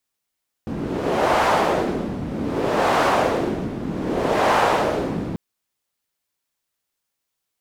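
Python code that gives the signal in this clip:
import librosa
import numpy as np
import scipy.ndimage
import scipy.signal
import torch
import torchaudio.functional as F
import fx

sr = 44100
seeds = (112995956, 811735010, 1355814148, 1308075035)

y = fx.wind(sr, seeds[0], length_s=4.69, low_hz=210.0, high_hz=840.0, q=1.4, gusts=3, swing_db=9.5)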